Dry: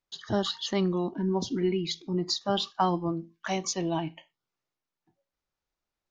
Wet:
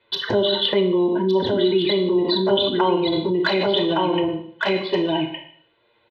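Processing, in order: steep low-pass 4000 Hz 96 dB/oct; envelope flanger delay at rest 8.7 ms, full sweep at -23.5 dBFS; thirty-one-band EQ 160 Hz -10 dB, 250 Hz +6 dB, 400 Hz +3 dB, 1250 Hz -5 dB; on a send: echo 1.164 s -4.5 dB; on the sum: Schroeder reverb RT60 0.53 s, combs from 25 ms, DRR 6 dB; in parallel at +2.5 dB: negative-ratio compressor -37 dBFS, ratio -1; on the sum: HPF 120 Hz 12 dB/oct; comb 2 ms, depth 68%; three-band squash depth 40%; gain +6 dB

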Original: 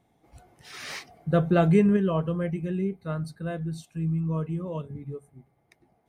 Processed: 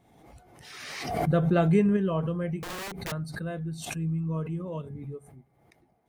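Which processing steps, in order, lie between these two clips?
2.59–3.12 wrapped overs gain 30 dB; backwards sustainer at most 46 dB/s; gain -2.5 dB

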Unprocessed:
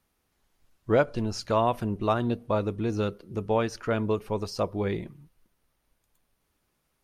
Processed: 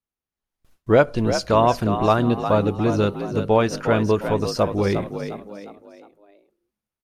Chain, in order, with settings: gate with hold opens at -53 dBFS; AGC gain up to 6 dB; on a send: frequency-shifting echo 0.356 s, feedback 40%, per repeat +51 Hz, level -9 dB; on the sum: gain +1.5 dB

